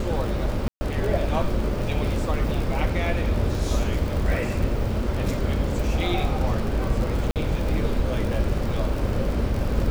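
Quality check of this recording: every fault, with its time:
surface crackle 45 per second −27 dBFS
0:00.68–0:00.81: drop-out 130 ms
0:07.31–0:07.36: drop-out 48 ms

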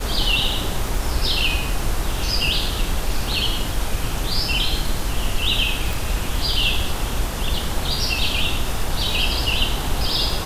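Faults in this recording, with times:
surface crackle 25 per second −28 dBFS
0:05.93: click

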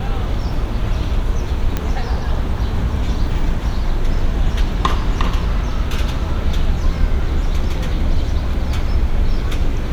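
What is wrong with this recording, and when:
0:01.77: click −6 dBFS

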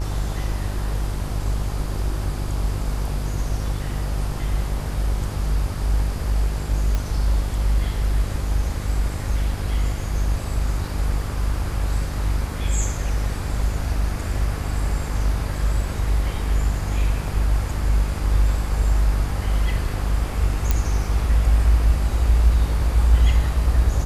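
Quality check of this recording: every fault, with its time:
mains buzz 50 Hz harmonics 38 −25 dBFS
0:06.95: click −11 dBFS
0:20.71: click −5 dBFS

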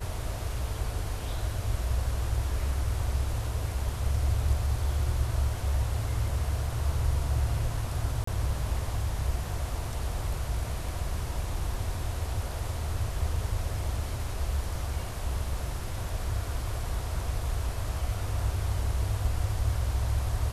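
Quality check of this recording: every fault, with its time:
0:08.24–0:08.27: drop-out 34 ms

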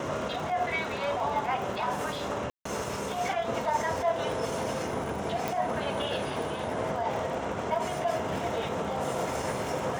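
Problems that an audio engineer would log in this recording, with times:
surface crackle 46 per second −36 dBFS
0:02.50–0:02.65: drop-out 154 ms
0:05.48: click

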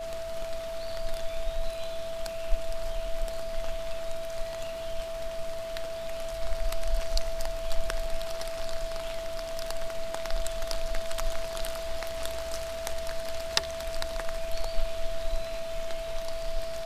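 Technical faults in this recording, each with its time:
whistle 660 Hz −34 dBFS

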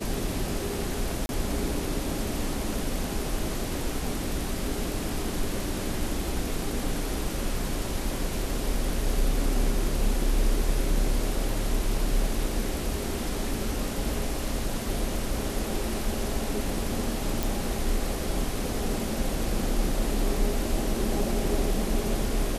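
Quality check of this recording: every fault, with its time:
0:01.26–0:01.29: drop-out 31 ms
0:17.43: click

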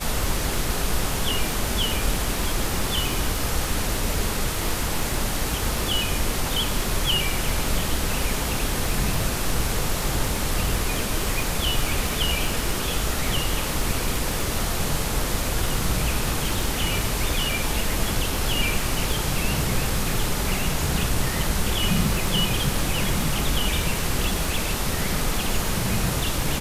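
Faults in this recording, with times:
surface crackle 59 per second −28 dBFS

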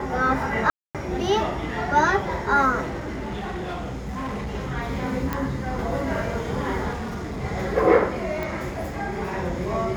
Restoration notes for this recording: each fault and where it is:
0:00.70–0:00.95: drop-out 247 ms
0:02.81–0:04.52: clipping −26.5 dBFS
0:05.33: click −12 dBFS
0:06.92–0:07.44: clipping −27 dBFS
0:08.43: click

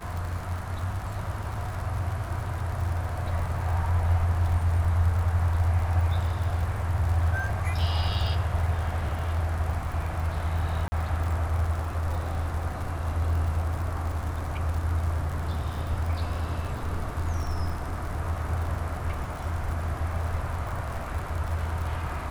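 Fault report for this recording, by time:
surface crackle 80 per second −33 dBFS
0:10.88–0:10.92: drop-out 40 ms

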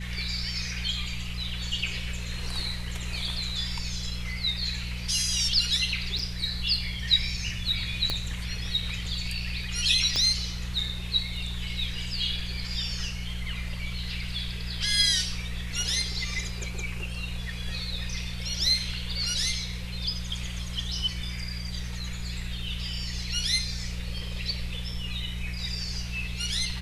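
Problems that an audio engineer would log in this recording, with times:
mains hum 60 Hz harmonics 3 −35 dBFS
0:06.19: drop-out 3.3 ms
0:08.10: click −14 dBFS
0:10.16: click −14 dBFS

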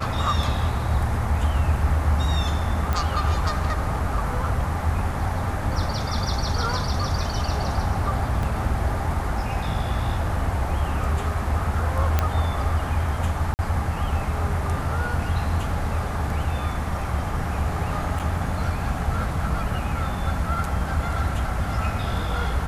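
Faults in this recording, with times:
0:02.93: click
0:08.43: drop-out 2.3 ms
0:12.19: click −7 dBFS
0:13.54–0:13.59: drop-out 49 ms
0:18.19–0:18.20: drop-out 7.4 ms

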